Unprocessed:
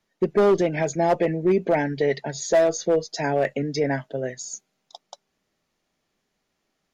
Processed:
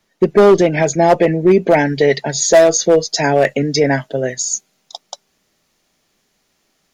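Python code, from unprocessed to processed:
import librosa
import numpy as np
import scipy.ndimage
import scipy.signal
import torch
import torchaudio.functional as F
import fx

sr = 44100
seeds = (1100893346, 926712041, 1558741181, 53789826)

y = fx.high_shelf(x, sr, hz=3700.0, db=fx.steps((0.0, 3.0), (1.68, 8.0)))
y = y * librosa.db_to_amplitude(9.0)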